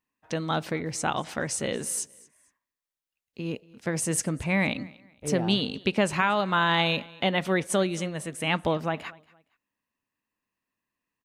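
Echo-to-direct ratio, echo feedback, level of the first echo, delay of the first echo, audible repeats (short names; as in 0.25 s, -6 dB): -22.5 dB, 29%, -23.0 dB, 0.232 s, 2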